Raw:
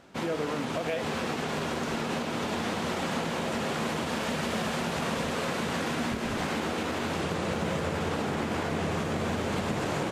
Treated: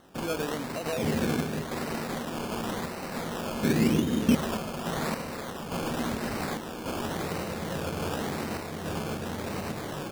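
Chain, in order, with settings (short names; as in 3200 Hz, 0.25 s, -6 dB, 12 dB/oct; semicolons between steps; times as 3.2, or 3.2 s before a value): 0.98–1.62 tilt shelf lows +9 dB, about 800 Hz; random-step tremolo; 3.63–4.35 resonant low shelf 470 Hz +12 dB, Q 1.5; decimation with a swept rate 18×, swing 60% 0.91 Hz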